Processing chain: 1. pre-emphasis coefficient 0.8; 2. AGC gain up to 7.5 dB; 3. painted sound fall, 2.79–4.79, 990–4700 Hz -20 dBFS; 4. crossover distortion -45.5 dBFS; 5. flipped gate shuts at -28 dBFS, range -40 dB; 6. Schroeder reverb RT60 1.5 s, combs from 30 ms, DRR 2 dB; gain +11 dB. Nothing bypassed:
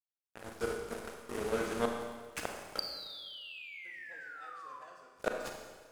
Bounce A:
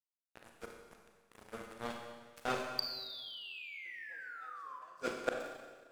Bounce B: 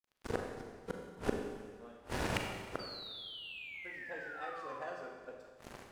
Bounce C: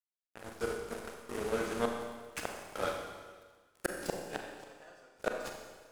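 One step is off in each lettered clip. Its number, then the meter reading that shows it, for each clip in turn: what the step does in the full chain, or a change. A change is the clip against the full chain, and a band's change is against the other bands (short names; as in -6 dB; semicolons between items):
2, momentary loudness spread change +2 LU; 1, 125 Hz band +7.0 dB; 3, 4 kHz band -6.5 dB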